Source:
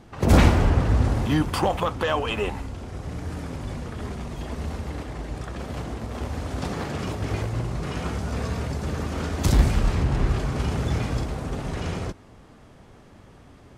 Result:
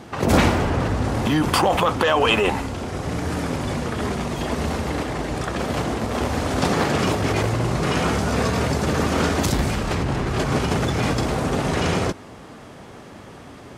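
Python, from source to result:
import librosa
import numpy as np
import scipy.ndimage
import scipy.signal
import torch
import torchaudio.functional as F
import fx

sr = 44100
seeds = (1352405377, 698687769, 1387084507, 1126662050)

p1 = fx.over_compress(x, sr, threshold_db=-27.0, ratio=-0.5)
p2 = x + (p1 * 10.0 ** (1.0 / 20.0))
p3 = fx.highpass(p2, sr, hz=190.0, slope=6)
y = p3 * 10.0 ** (3.0 / 20.0)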